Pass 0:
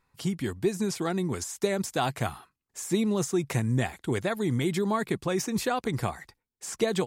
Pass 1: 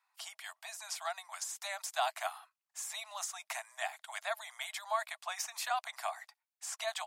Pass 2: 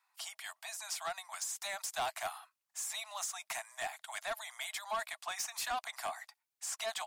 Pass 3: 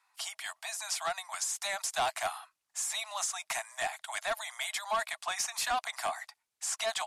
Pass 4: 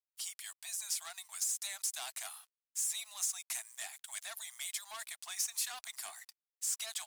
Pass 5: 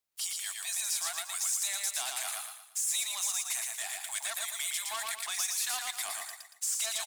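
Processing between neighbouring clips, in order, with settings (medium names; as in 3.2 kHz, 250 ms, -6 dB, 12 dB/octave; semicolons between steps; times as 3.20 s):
Chebyshev high-pass 630 Hz, order 8; trim -3.5 dB
peaking EQ 14 kHz +3 dB 2 oct; saturation -31.5 dBFS, distortion -12 dB; trim +1 dB
low-pass 12 kHz 24 dB/octave; trim +5.5 dB
single-diode clipper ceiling -28.5 dBFS; crossover distortion -57 dBFS; pre-emphasis filter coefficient 0.97; trim +1.5 dB
peak limiter -31.5 dBFS, peak gain reduction 8.5 dB; on a send: feedback delay 116 ms, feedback 39%, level -3 dB; on the sum: trim +8.5 dB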